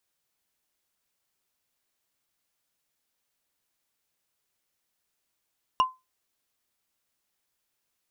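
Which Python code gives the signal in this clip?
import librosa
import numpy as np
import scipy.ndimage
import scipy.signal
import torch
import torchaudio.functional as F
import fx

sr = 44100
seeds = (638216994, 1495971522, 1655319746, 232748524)

y = fx.strike_wood(sr, length_s=0.45, level_db=-14.5, body='bar', hz=1030.0, decay_s=0.22, tilt_db=8.5, modes=5)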